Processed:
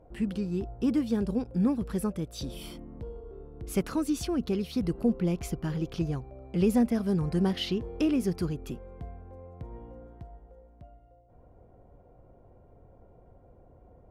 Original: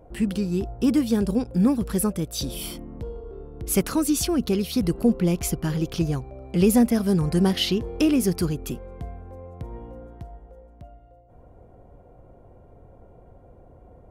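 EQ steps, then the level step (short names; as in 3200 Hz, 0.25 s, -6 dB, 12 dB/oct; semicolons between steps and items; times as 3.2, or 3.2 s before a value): LPF 3200 Hz 6 dB/oct; -6.0 dB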